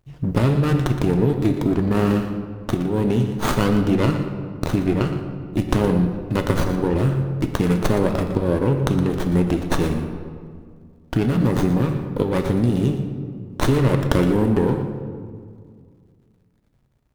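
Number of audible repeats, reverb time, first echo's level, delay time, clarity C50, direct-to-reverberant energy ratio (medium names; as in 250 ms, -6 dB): 1, 2.0 s, -11.5 dB, 118 ms, 6.0 dB, 5.0 dB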